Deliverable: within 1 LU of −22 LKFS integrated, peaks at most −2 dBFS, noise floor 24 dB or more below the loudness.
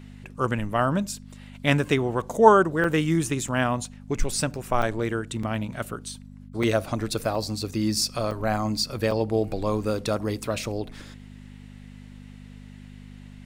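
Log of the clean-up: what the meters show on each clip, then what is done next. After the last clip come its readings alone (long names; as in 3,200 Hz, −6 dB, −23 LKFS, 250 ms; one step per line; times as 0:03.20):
number of dropouts 8; longest dropout 4.2 ms; mains hum 50 Hz; hum harmonics up to 250 Hz; level of the hum −41 dBFS; integrated loudness −25.0 LKFS; sample peak −2.0 dBFS; target loudness −22.0 LKFS
→ repair the gap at 0:02.84/0:03.48/0:04.82/0:05.43/0:06.63/0:07.35/0:08.31/0:09.11, 4.2 ms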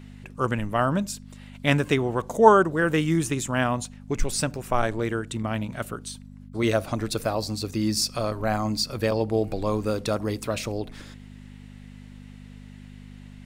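number of dropouts 0; mains hum 50 Hz; hum harmonics up to 250 Hz; level of the hum −42 dBFS
→ hum removal 50 Hz, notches 5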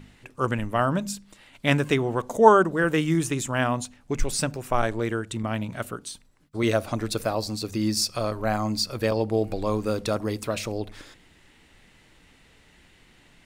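mains hum none found; integrated loudness −25.5 LKFS; sample peak −2.0 dBFS; target loudness −22.0 LKFS
→ level +3.5 dB
brickwall limiter −2 dBFS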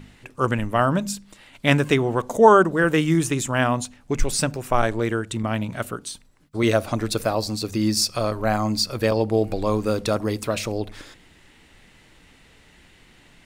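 integrated loudness −22.0 LKFS; sample peak −2.0 dBFS; background noise floor −54 dBFS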